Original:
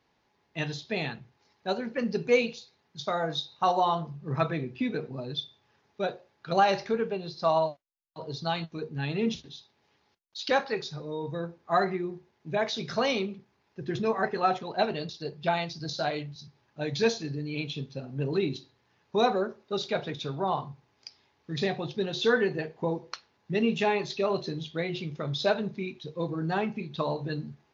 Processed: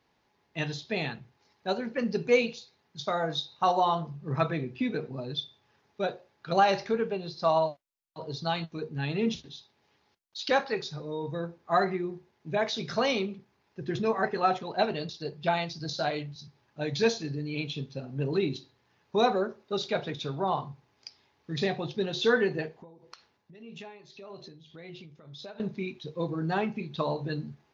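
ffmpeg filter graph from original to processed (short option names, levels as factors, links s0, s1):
-filter_complex "[0:a]asettb=1/sr,asplit=3[s0][s1][s2];[s0]atrim=end=22.684[s3];[s1]atrim=start=22.68:end=25.6,asetpts=PTS-STARTPTS,afade=t=in:d=0.004:c=qsin,afade=t=out:st=2.916:d=0.004:c=qsin,acompressor=threshold=0.00891:ratio=6:attack=3.2:release=140:knee=1:detection=peak,tremolo=f=1.8:d=0.67[s4];[s2]atrim=start=25.596[s5];[s3][s4]acrossfade=d=0.004:c1=hsin:c2=qsin[s6];[s6][s5]acrossfade=d=0.004:c1=qsin:c2=hsin"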